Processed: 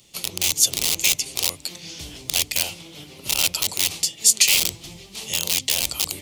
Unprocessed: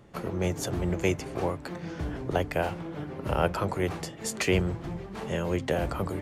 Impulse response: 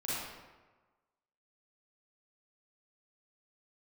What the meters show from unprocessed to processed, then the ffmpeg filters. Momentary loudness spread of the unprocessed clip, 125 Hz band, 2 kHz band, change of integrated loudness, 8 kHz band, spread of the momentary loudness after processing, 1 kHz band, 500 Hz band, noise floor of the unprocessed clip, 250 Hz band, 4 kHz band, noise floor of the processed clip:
9 LU, -10.0 dB, +7.0 dB, +11.0 dB, +22.0 dB, 18 LU, -6.0 dB, -11.0 dB, -42 dBFS, -10.5 dB, +20.0 dB, -46 dBFS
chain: -filter_complex "[0:a]acrossover=split=610[s0][s1];[s0]aeval=exprs='(mod(15.8*val(0)+1,2)-1)/15.8':c=same[s2];[s2][s1]amix=inputs=2:normalize=0,aexciter=amount=14:drive=6.9:freq=2500,volume=0.422"

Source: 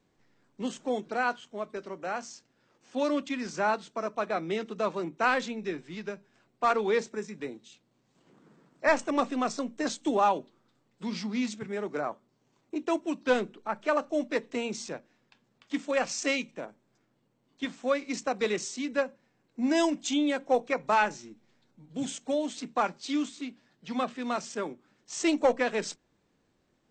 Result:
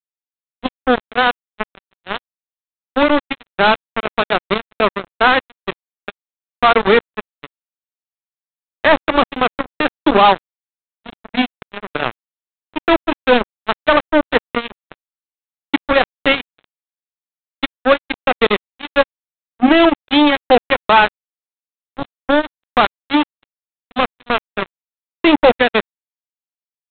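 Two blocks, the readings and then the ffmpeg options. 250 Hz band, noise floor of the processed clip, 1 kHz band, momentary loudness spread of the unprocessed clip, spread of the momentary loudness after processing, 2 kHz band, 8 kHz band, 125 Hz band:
+12.0 dB, under -85 dBFS, +14.0 dB, 13 LU, 16 LU, +15.5 dB, under -40 dB, +12.5 dB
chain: -af "aresample=8000,acrusher=bits=3:mix=0:aa=0.5,aresample=44100,alimiter=level_in=8.41:limit=0.891:release=50:level=0:latency=1,volume=0.891"

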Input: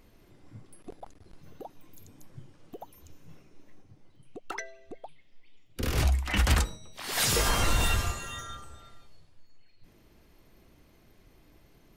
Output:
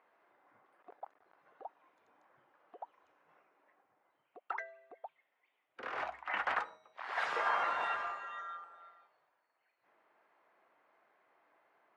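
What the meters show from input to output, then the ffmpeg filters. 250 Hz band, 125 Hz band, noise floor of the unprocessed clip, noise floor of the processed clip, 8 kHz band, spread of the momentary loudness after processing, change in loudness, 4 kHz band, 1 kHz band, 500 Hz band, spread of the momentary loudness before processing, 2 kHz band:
-22.5 dB, under -40 dB, -60 dBFS, -81 dBFS, under -30 dB, 21 LU, -9.0 dB, -18.0 dB, -0.5 dB, -8.0 dB, 23 LU, -4.0 dB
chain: -af "asuperpass=centerf=1100:order=4:qfactor=0.97"

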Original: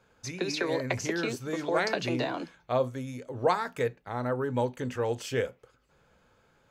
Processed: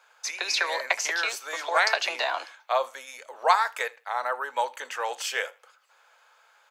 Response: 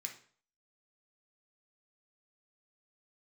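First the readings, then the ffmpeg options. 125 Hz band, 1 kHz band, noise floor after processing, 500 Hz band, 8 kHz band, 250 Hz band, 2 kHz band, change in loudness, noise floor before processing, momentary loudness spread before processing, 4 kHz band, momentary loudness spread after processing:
under -40 dB, +7.5 dB, -62 dBFS, -2.5 dB, +8.5 dB, under -20 dB, +8.5 dB, +4.0 dB, -67 dBFS, 7 LU, +8.5 dB, 11 LU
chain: -filter_complex "[0:a]highpass=f=740:w=0.5412,highpass=f=740:w=1.3066,asplit=2[s0][s1];[s1]aecho=0:1:80|160:0.0668|0.014[s2];[s0][s2]amix=inputs=2:normalize=0,volume=2.66"

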